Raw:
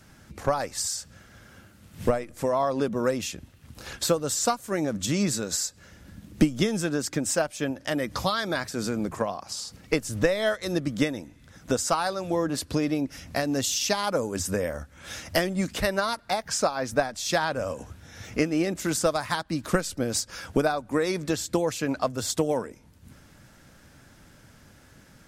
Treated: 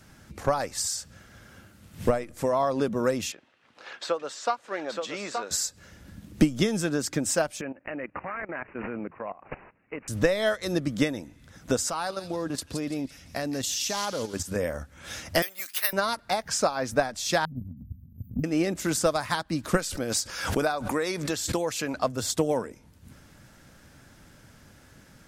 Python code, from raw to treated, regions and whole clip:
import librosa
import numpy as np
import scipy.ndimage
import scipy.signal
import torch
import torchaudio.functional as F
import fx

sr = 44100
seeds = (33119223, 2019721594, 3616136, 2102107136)

y = fx.chain(x, sr, fx.bandpass_edges(low_hz=550.0, high_hz=3100.0),
    fx.echo_single(ms=874, db=-5.5), at=(3.32, 5.51))
y = fx.chain(y, sr, fx.highpass(hz=320.0, slope=6),
    fx.level_steps(step_db=17),
    fx.resample_bad(factor=8, down='none', up='filtered'), at=(7.61, 10.08))
y = fx.chain(y, sr, fx.level_steps(step_db=10),
    fx.echo_wet_highpass(ms=169, feedback_pct=37, hz=2700.0, wet_db=-6.5), at=(11.9, 14.56))
y = fx.chain(y, sr, fx.highpass(hz=1400.0, slope=12),
    fx.resample_bad(factor=3, down='filtered', up='zero_stuff'), at=(15.42, 15.93))
y = fx.chain(y, sr, fx.brickwall_bandstop(low_hz=270.0, high_hz=13000.0),
    fx.transient(attack_db=7, sustain_db=0), at=(17.45, 18.44))
y = fx.chain(y, sr, fx.low_shelf(hz=400.0, db=-7.5),
    fx.pre_swell(db_per_s=60.0), at=(19.77, 21.94))